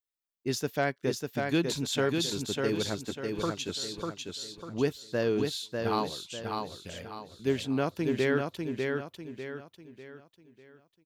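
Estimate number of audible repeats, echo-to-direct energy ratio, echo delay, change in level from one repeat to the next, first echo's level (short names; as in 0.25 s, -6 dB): 4, -3.5 dB, 0.597 s, -8.0 dB, -4.0 dB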